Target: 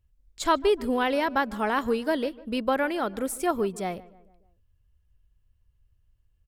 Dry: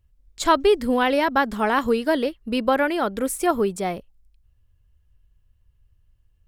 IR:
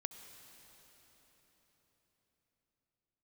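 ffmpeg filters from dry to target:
-filter_complex "[0:a]asplit=2[a][b];[b]adelay=150,lowpass=f=2k:p=1,volume=-20dB,asplit=2[c][d];[d]adelay=150,lowpass=f=2k:p=1,volume=0.5,asplit=2[e][f];[f]adelay=150,lowpass=f=2k:p=1,volume=0.5,asplit=2[g][h];[h]adelay=150,lowpass=f=2k:p=1,volume=0.5[i];[a][c][e][g][i]amix=inputs=5:normalize=0,volume=-5dB"

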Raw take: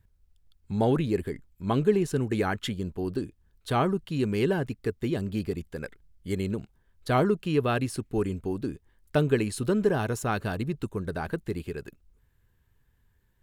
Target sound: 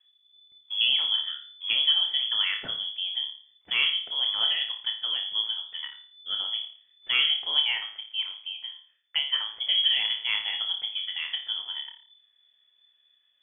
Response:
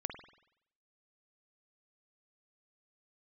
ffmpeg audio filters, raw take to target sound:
-filter_complex "[0:a]asettb=1/sr,asplit=3[a][b][c];[a]atrim=end=7.654[d];[b]atrim=start=7.65:end=9.58,asetpts=PTS-STARTPTS,afade=t=in:d=0.004:c=qsin,afade=t=out:st=1.926:d=0.004:c=qsin,acrossover=split=300 2600:gain=0.141 1 0.224[e][f][g];[e][f][g]amix=inputs=3:normalize=0[h];[c]atrim=start=9.576[i];[d][h]acrossfade=d=0.004:c1=hsin:c2=qsin[j];[j][i]acrossfade=d=0.004:c1=qsin:c2=hsin[k];[1:a]atrim=start_sample=2205,asetrate=74970,aresample=44100[l];[k][l]afir=irnorm=-1:irlink=0,lowpass=f=3k:t=q:w=0.5098,lowpass=f=3k:t=q:w=0.6013,lowpass=f=3k:t=q:w=0.9,lowpass=f=3k:t=q:w=2.563,afreqshift=-3500,volume=4.5dB"

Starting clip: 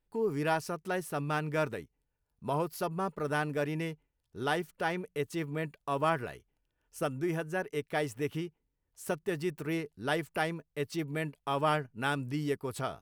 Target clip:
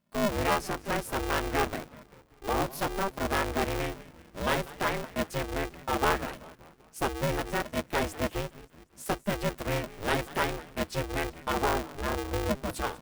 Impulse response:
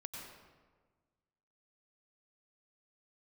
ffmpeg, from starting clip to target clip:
-filter_complex "[0:a]asettb=1/sr,asplit=3[a][b][c];[a]atrim=end=11.524[d];[b]atrim=start=11.52:end=12.66,asetpts=PTS-STARTPTS,afade=t=in:d=0.004:c=qsin,afade=t=out:st=1.136:d=0.004:c=qsin,lowpass=1k[e];[c]atrim=start=12.656[f];[d][e]acrossfade=d=0.004:c1=hsin:c2=qsin[g];[g][f]acrossfade=d=0.004:c1=qsin:c2=hsin,asplit=6[h][i][j][k][l][m];[i]adelay=191,afreqshift=-100,volume=-18.5dB[n];[j]adelay=382,afreqshift=-200,volume=-23.9dB[o];[k]adelay=573,afreqshift=-300,volume=-29.2dB[p];[l]adelay=764,afreqshift=-400,volume=-34.6dB[q];[m]adelay=955,afreqshift=-500,volume=-39.9dB[r];[h][n][o][p][q][r]amix=inputs=6:normalize=0,aeval=exprs='val(0)*sgn(sin(2*PI*200*n/s))':c=same,volume=3dB"

